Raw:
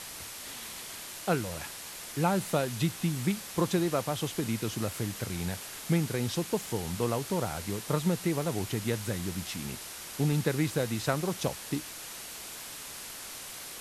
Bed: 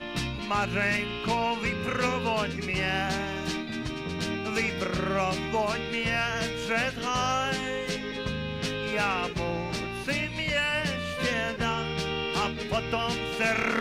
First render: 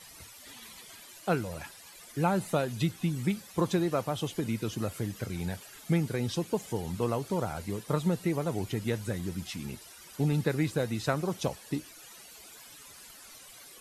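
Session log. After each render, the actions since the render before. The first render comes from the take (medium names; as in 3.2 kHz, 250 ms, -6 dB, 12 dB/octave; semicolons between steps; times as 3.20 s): noise reduction 14 dB, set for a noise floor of -43 dBFS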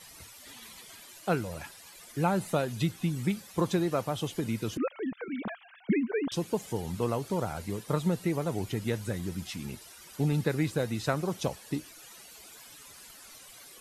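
4.77–6.32 s: formants replaced by sine waves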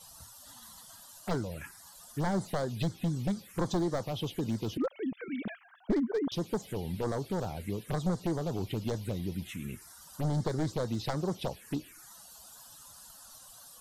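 one-sided wavefolder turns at -24 dBFS; touch-sensitive phaser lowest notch 300 Hz, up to 2.6 kHz, full sweep at -27.5 dBFS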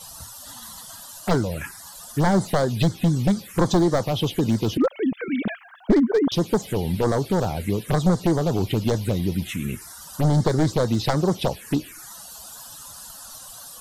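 trim +11.5 dB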